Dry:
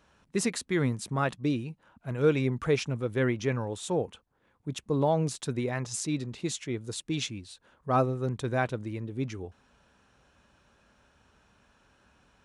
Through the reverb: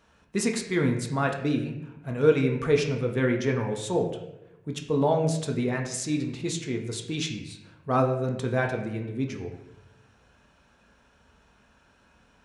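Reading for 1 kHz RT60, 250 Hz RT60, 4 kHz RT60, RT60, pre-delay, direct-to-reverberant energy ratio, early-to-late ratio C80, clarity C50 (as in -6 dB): 0.80 s, 1.1 s, 0.65 s, 0.95 s, 4 ms, 2.0 dB, 9.5 dB, 7.5 dB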